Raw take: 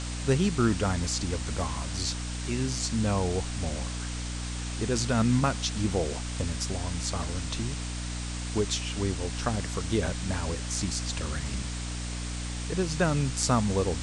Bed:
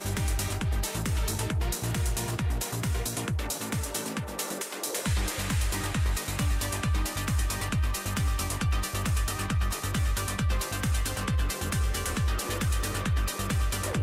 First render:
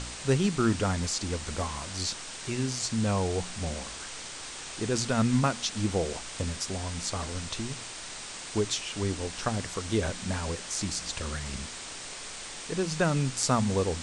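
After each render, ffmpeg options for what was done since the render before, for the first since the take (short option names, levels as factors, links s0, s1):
-af "bandreject=f=60:t=h:w=4,bandreject=f=120:t=h:w=4,bandreject=f=180:t=h:w=4,bandreject=f=240:t=h:w=4,bandreject=f=300:t=h:w=4"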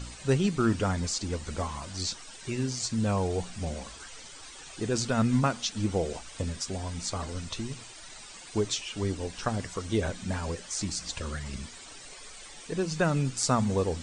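-af "afftdn=nr=12:nf=-41"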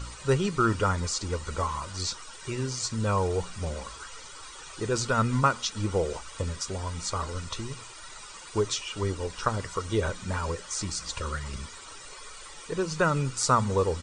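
-af "equalizer=f=1200:t=o:w=0.4:g=11.5,aecho=1:1:2.1:0.42"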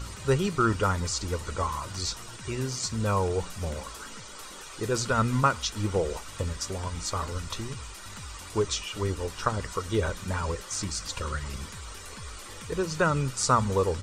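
-filter_complex "[1:a]volume=0.158[s0];[0:a][s0]amix=inputs=2:normalize=0"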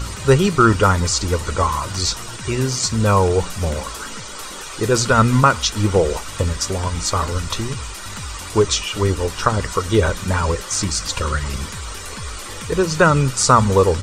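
-af "volume=3.55,alimiter=limit=0.891:level=0:latency=1"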